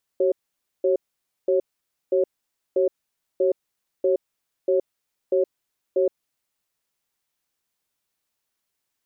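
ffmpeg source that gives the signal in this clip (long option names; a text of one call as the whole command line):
ffmpeg -f lavfi -i "aevalsrc='0.106*(sin(2*PI*379*t)+sin(2*PI*547*t))*clip(min(mod(t,0.64),0.12-mod(t,0.64))/0.005,0,1)':duration=6.02:sample_rate=44100" out.wav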